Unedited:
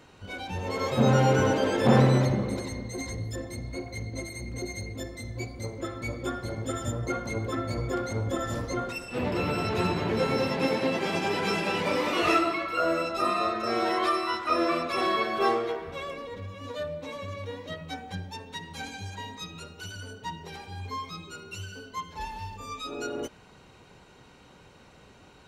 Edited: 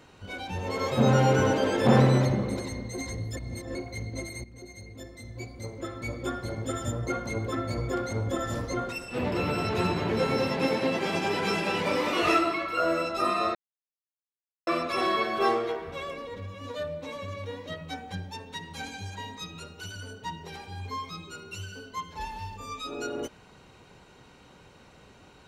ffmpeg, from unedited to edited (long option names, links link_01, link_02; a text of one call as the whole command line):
ffmpeg -i in.wav -filter_complex "[0:a]asplit=6[link_01][link_02][link_03][link_04][link_05][link_06];[link_01]atrim=end=3.372[link_07];[link_02]atrim=start=3.368:end=3.752,asetpts=PTS-STARTPTS,areverse[link_08];[link_03]atrim=start=3.748:end=4.44,asetpts=PTS-STARTPTS,afade=type=out:start_time=0.688:duration=0.004:curve=hsin:silence=0.211349[link_09];[link_04]atrim=start=4.44:end=13.55,asetpts=PTS-STARTPTS,afade=type=in:duration=1.86:silence=0.211349,afade=type=out:start_time=9.106:duration=0.004:curve=hsin[link_10];[link_05]atrim=start=13.55:end=14.67,asetpts=PTS-STARTPTS,volume=0[link_11];[link_06]atrim=start=14.67,asetpts=PTS-STARTPTS,afade=type=in:duration=0.004:curve=hsin[link_12];[link_07][link_08]acrossfade=duration=0.004:curve1=hsin:curve2=hsin[link_13];[link_09][link_10][link_11][link_12]concat=n=4:v=0:a=1[link_14];[link_13][link_14]acrossfade=duration=0.004:curve1=hsin:curve2=hsin" out.wav